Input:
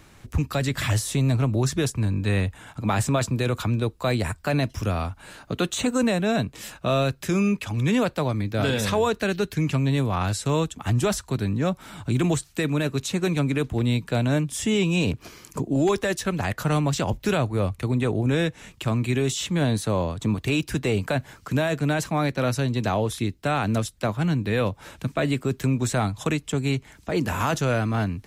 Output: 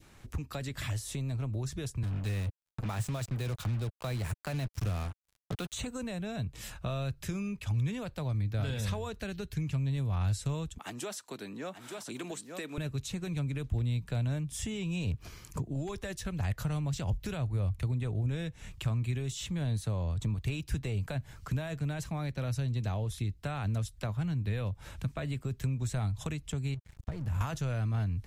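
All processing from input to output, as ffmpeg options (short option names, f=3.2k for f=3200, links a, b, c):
-filter_complex "[0:a]asettb=1/sr,asplit=3[a][b][c];[a]atrim=end=2.034[d];[b]atrim=start=2.03:end=5.73,asetpts=PTS-STARTPTS,afade=t=in:d=0.004:c=qsin,afade=t=out:st=3.696:d=0.004:c=qsin,highpass=f=95:w=0.5412,highpass=f=95:w=1.3066,acrusher=bits=4:mix=0:aa=0.5[e];[c]atrim=start=5.726[f];[d][e]acrossfade=d=0.004:c1=hsin:c2=qsin[g];[g][f]acrossfade=d=0.004:c1=qsin:c2=hsin,asettb=1/sr,asplit=3[h][i][j];[h]atrim=end=10.784[k];[i]atrim=start=10.78:end=12.78,asetpts=PTS-STARTPTS,afade=t=in:d=0.004:c=qsin,afade=t=out:st=1.996:d=0.004:c=qsin,highpass=f=270:w=0.5412,highpass=f=270:w=1.3066,aecho=1:1:882:0.355,atrim=end_sample=88200[l];[j]atrim=start=12.776[m];[k][l]acrossfade=d=0.004:c1=hsin:c2=qsin[n];[n][m]acrossfade=d=0.004:c1=qsin:c2=hsin,asettb=1/sr,asplit=3[o][p][q];[o]atrim=end=26.744[r];[p]atrim=start=26.74:end=27.41,asetpts=PTS-STARTPTS,afade=t=in:d=0.004:c=qsin,afade=t=out:st=0.666:d=0.004:c=qsin,equalizer=f=110:t=o:w=2:g=13,acompressor=threshold=-28dB:ratio=10:attack=3.2:release=140:knee=1:detection=peak,aeval=exprs='sgn(val(0))*max(abs(val(0))-0.0075,0)':c=same[s];[q]atrim=start=27.406[t];[r][s]acrossfade=d=0.004:c1=hsin:c2=qsin[u];[u][t]acrossfade=d=0.004:c1=qsin:c2=hsin,adynamicequalizer=threshold=0.01:dfrequency=1200:dqfactor=0.91:tfrequency=1200:tqfactor=0.91:attack=5:release=100:ratio=0.375:range=2:mode=cutabove:tftype=bell,acompressor=threshold=-30dB:ratio=3,asubboost=boost=6:cutoff=110,volume=-6dB"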